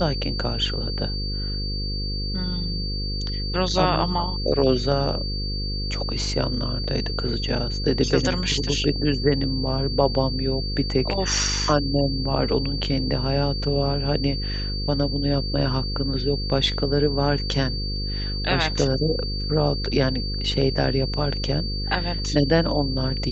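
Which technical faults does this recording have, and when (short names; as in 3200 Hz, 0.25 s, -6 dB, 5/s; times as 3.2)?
buzz 50 Hz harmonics 10 -28 dBFS
tone 4600 Hz -30 dBFS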